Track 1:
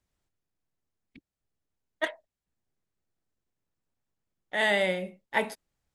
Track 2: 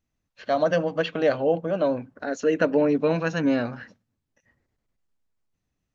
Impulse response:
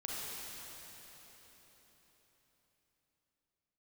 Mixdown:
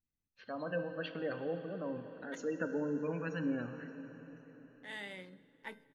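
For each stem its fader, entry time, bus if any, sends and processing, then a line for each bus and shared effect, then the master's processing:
−8.0 dB, 0.30 s, send −23 dB, adaptive Wiener filter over 41 samples
−4.5 dB, 0.00 s, send −7 dB, gate on every frequency bin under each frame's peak −25 dB strong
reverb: on, RT60 4.5 s, pre-delay 32 ms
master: parametric band 640 Hz −10 dB 0.6 octaves; tuned comb filter 520 Hz, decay 0.49 s, mix 70%

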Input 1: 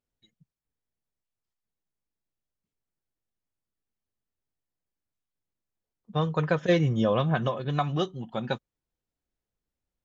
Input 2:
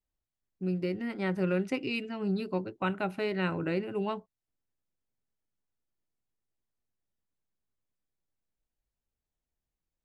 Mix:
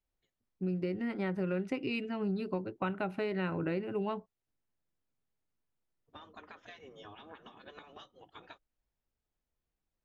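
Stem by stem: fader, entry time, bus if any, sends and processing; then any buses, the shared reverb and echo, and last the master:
−3.0 dB, 0.00 s, no send, gate on every frequency bin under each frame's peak −15 dB weak; downward compressor 10 to 1, threshold −44 dBFS, peak gain reduction 15.5 dB
+1.0 dB, 0.00 s, no send, no processing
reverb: not used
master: high-shelf EQ 4,400 Hz −10.5 dB; downward compressor 5 to 1, threshold −30 dBFS, peak gain reduction 7 dB

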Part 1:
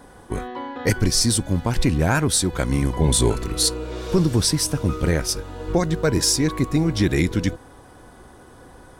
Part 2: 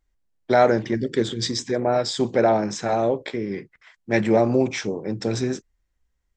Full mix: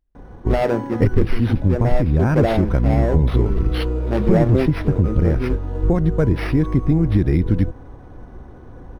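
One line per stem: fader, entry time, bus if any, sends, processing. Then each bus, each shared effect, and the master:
−0.5 dB, 0.15 s, no send, spectral tilt −3 dB per octave; downward compressor, threshold −11 dBFS, peak gain reduction 11.5 dB
+1.0 dB, 0.00 s, no send, running median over 41 samples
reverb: not used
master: linearly interpolated sample-rate reduction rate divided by 6×

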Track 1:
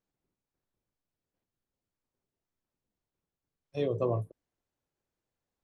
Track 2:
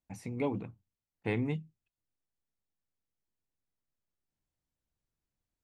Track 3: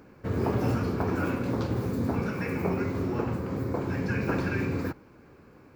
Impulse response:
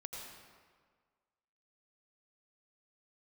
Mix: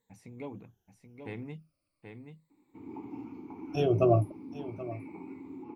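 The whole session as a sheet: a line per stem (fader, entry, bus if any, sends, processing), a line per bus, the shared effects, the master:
+1.5 dB, 0.00 s, no send, echo send −16 dB, rippled gain that drifts along the octave scale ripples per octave 1, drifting −0.37 Hz, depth 24 dB
−9.0 dB, 0.00 s, no send, echo send −7 dB, no processing
−5.0 dB, 2.50 s, no send, no echo send, formant filter u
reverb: not used
echo: single-tap delay 780 ms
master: no processing

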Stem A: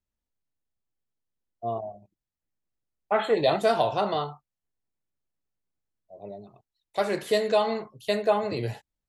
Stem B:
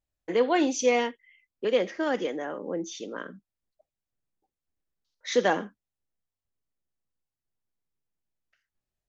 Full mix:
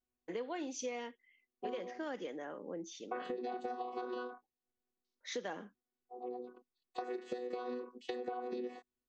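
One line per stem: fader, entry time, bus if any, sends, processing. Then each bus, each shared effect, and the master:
+1.0 dB, 0.00 s, no send, channel vocoder with a chord as carrier bare fifth, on B3; downward compressor 3 to 1, threshold −35 dBFS, peak gain reduction 13.5 dB
−10.5 dB, 0.00 s, no send, no processing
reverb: not used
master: downward compressor, threshold −37 dBFS, peak gain reduction 9.5 dB

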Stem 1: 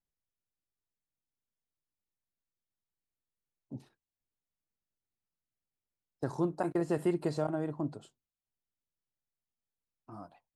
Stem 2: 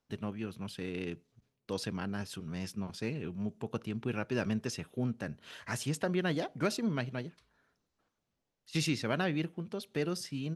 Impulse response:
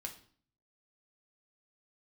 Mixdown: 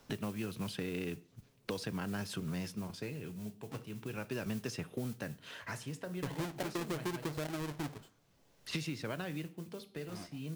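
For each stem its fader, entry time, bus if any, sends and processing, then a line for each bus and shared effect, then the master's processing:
−8.5 dB, 0.00 s, send −9 dB, each half-wave held at its own peak
−1.0 dB, 0.00 s, send −10.5 dB, noise that follows the level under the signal 20 dB; multiband upward and downward compressor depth 70%; automatic ducking −17 dB, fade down 1.30 s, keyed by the first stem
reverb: on, RT60 0.50 s, pre-delay 6 ms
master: downward compressor, threshold −34 dBFS, peak gain reduction 8 dB

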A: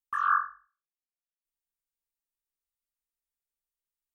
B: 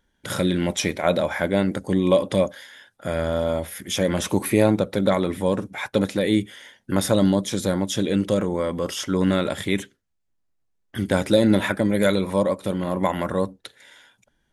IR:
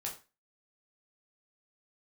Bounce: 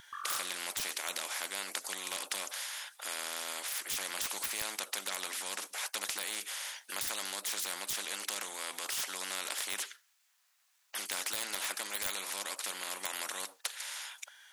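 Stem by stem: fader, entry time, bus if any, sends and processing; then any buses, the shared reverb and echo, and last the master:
−10.0 dB, 0.00 s, no send, downward compressor, threshold −30 dBFS, peak gain reduction 9.5 dB
+2.0 dB, 0.00 s, no send, Bessel high-pass filter 1,500 Hz, order 4; de-essing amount 60%; every bin compressed towards the loudest bin 4 to 1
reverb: not used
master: no processing

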